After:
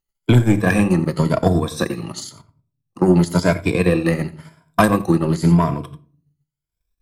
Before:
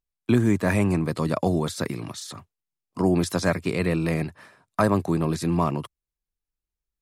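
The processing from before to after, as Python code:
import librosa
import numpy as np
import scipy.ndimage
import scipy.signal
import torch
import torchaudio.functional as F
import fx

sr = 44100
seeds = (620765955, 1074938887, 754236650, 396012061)

y = fx.spec_ripple(x, sr, per_octave=1.7, drift_hz=0.95, depth_db=13)
y = 10.0 ** (-12.5 / 20.0) * np.tanh(y / 10.0 ** (-12.5 / 20.0))
y = fx.level_steps(y, sr, step_db=22, at=(2.29, 3.08))
y = fx.high_shelf(y, sr, hz=5400.0, db=6.5, at=(4.27, 5.08))
y = y + 10.0 ** (-14.0 / 20.0) * np.pad(y, (int(89 * sr / 1000.0), 0))[:len(y)]
y = fx.room_shoebox(y, sr, seeds[0], volume_m3=400.0, walls='furnished', distance_m=0.72)
y = fx.transient(y, sr, attack_db=6, sustain_db=-7)
y = y * librosa.db_to_amplitude(3.5)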